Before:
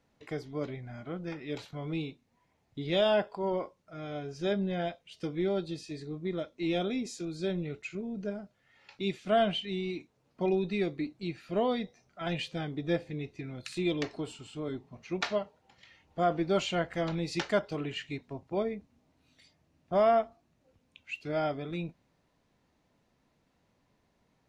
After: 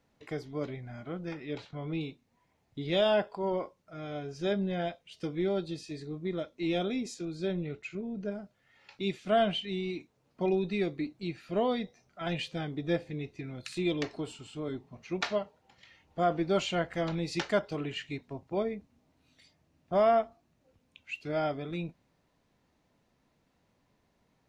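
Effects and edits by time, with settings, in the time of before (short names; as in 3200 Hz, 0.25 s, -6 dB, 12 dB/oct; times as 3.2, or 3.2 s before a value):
1.46–2.01 air absorption 100 m
7.14–8.32 high shelf 6200 Hz -8 dB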